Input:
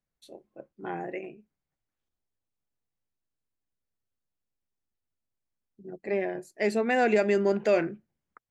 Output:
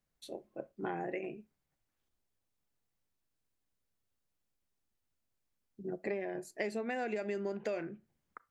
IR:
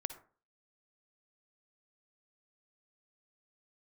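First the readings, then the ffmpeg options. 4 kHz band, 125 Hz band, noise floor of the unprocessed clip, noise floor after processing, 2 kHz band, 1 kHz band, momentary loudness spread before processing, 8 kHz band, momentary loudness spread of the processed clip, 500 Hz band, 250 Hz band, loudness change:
-10.0 dB, -9.0 dB, under -85 dBFS, -84 dBFS, -10.5 dB, -10.5 dB, 18 LU, -7.0 dB, 12 LU, -11.0 dB, -9.5 dB, -12.0 dB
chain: -filter_complex "[0:a]acompressor=threshold=-37dB:ratio=10,asplit=2[a][b];[1:a]atrim=start_sample=2205,asetrate=79380,aresample=44100[c];[b][c]afir=irnorm=-1:irlink=0,volume=-3.5dB[d];[a][d]amix=inputs=2:normalize=0,volume=1dB"

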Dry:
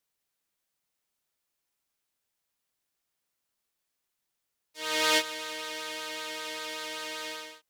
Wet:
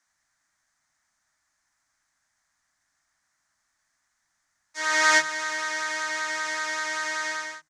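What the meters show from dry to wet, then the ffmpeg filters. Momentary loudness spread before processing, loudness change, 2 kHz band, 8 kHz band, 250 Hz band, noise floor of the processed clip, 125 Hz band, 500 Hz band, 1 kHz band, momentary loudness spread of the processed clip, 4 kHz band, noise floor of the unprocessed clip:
12 LU, +6.5 dB, +10.5 dB, +6.5 dB, 0.0 dB, -76 dBFS, n/a, +1.0 dB, +8.0 dB, 10 LU, 0.0 dB, -83 dBFS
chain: -filter_complex "[0:a]firequalizer=gain_entry='entry(300,0);entry(440,-18);entry(630,2);entry(1800,12);entry(2700,-7);entry(6300,7);entry(14000,-21)':delay=0.05:min_phase=1,asplit=2[a][b];[b]acompressor=threshold=-37dB:ratio=6,volume=2dB[c];[a][c]amix=inputs=2:normalize=0,lowshelf=f=180:g=3.5,acrossover=split=190[d][e];[d]adelay=60[f];[f][e]amix=inputs=2:normalize=0"

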